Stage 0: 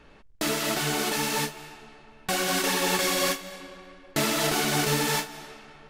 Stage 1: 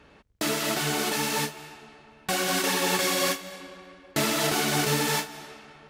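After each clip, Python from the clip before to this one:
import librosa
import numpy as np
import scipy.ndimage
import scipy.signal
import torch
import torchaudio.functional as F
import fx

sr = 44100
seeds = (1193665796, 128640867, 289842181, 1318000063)

y = scipy.signal.sosfilt(scipy.signal.butter(2, 53.0, 'highpass', fs=sr, output='sos'), x)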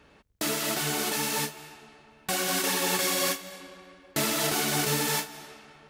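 y = fx.high_shelf(x, sr, hz=7200.0, db=6.5)
y = y * 10.0 ** (-3.0 / 20.0)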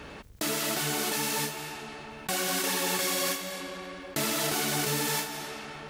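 y = fx.env_flatten(x, sr, amount_pct=50)
y = y * 10.0 ** (-3.0 / 20.0)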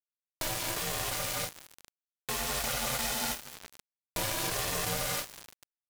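y = np.where(np.abs(x) >= 10.0 ** (-30.0 / 20.0), x, 0.0)
y = y * np.sin(2.0 * np.pi * 320.0 * np.arange(len(y)) / sr)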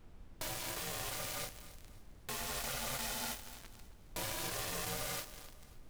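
y = fx.dmg_noise_colour(x, sr, seeds[0], colour='brown', level_db=-46.0)
y = fx.echo_feedback(y, sr, ms=269, feedback_pct=39, wet_db=-16.5)
y = y * 10.0 ** (-7.5 / 20.0)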